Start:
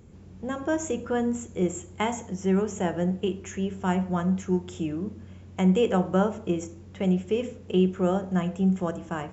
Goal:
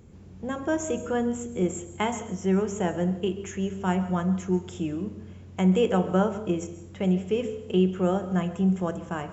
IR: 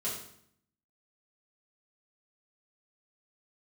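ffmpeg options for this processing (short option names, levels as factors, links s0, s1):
-filter_complex "[0:a]asplit=2[s0][s1];[1:a]atrim=start_sample=2205,adelay=128[s2];[s1][s2]afir=irnorm=-1:irlink=0,volume=0.126[s3];[s0][s3]amix=inputs=2:normalize=0"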